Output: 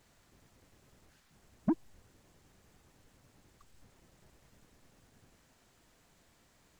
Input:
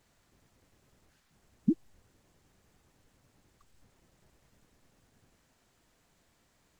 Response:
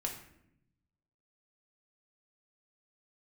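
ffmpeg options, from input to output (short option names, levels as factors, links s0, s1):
-af "asoftclip=type=tanh:threshold=0.0501,volume=1.41"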